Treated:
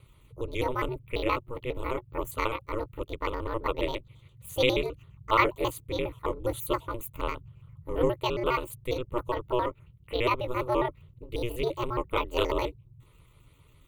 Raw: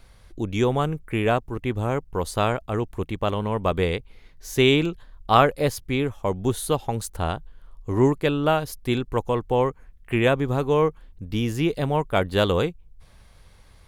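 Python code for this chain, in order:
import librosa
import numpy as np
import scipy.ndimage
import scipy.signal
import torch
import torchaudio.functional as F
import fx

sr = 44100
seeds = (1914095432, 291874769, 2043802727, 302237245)

y = fx.pitch_trill(x, sr, semitones=8.5, every_ms=68)
y = y * np.sin(2.0 * np.pi * 120.0 * np.arange(len(y)) / sr)
y = fx.fixed_phaser(y, sr, hz=1100.0, stages=8)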